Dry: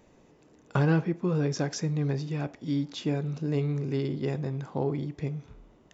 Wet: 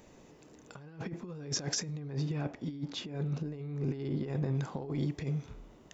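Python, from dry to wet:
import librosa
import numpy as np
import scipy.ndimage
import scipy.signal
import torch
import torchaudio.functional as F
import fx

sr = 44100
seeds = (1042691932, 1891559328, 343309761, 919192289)

y = fx.high_shelf(x, sr, hz=4100.0, db=fx.steps((0.0, 6.5), (1.98, -6.5), (4.54, 6.5)))
y = fx.over_compress(y, sr, threshold_db=-32.0, ratio=-0.5)
y = y * 10.0 ** (-2.5 / 20.0)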